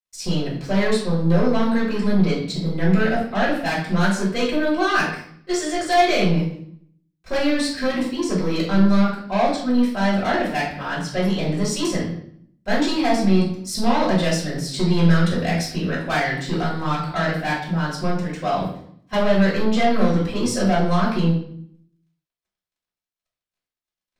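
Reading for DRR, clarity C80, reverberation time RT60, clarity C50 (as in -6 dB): -7.0 dB, 8.0 dB, 0.60 s, 4.5 dB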